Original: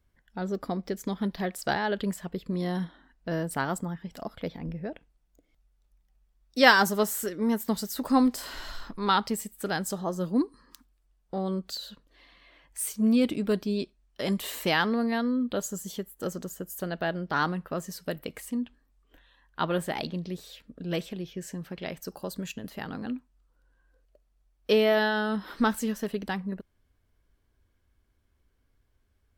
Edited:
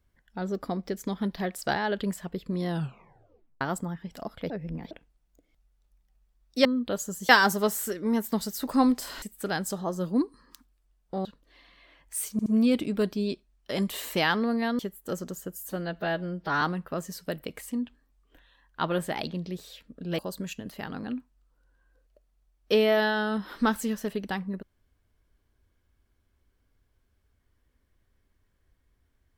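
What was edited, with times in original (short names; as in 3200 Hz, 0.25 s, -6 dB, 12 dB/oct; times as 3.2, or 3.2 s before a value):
2.68 tape stop 0.93 s
4.5–4.91 reverse
8.58–9.42 cut
11.45–11.89 cut
12.96 stutter 0.07 s, 3 plays
15.29–15.93 move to 6.65
16.72–17.41 stretch 1.5×
20.98–22.17 cut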